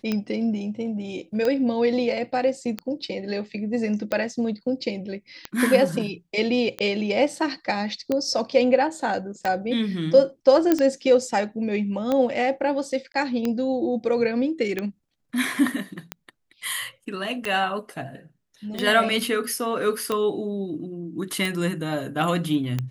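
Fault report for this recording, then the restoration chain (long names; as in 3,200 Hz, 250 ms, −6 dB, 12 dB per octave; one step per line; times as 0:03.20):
scratch tick 45 rpm −12 dBFS
0:10.72: click −6 dBFS
0:13.12–0:13.14: drop-out 22 ms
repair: click removal
repair the gap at 0:13.12, 22 ms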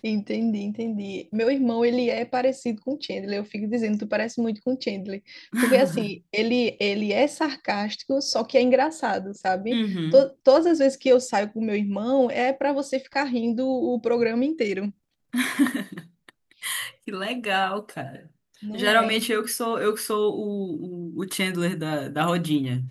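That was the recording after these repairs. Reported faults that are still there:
none of them is left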